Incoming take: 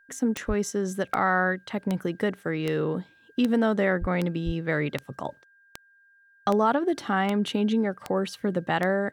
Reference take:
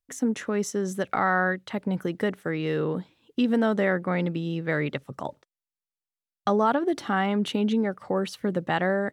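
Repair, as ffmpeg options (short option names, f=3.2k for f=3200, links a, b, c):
-filter_complex "[0:a]adeclick=t=4,bandreject=f=1.6k:w=30,asplit=3[a][b][c];[a]afade=t=out:st=0.47:d=0.02[d];[b]highpass=f=140:w=0.5412,highpass=f=140:w=1.3066,afade=t=in:st=0.47:d=0.02,afade=t=out:st=0.59:d=0.02[e];[c]afade=t=in:st=0.59:d=0.02[f];[d][e][f]amix=inputs=3:normalize=0,asplit=3[g][h][i];[g]afade=t=out:st=4:d=0.02[j];[h]highpass=f=140:w=0.5412,highpass=f=140:w=1.3066,afade=t=in:st=4:d=0.02,afade=t=out:st=4.12:d=0.02[k];[i]afade=t=in:st=4.12:d=0.02[l];[j][k][l]amix=inputs=3:normalize=0,asplit=3[m][n][o];[m]afade=t=out:st=4.45:d=0.02[p];[n]highpass=f=140:w=0.5412,highpass=f=140:w=1.3066,afade=t=in:st=4.45:d=0.02,afade=t=out:st=4.57:d=0.02[q];[o]afade=t=in:st=4.57:d=0.02[r];[p][q][r]amix=inputs=3:normalize=0"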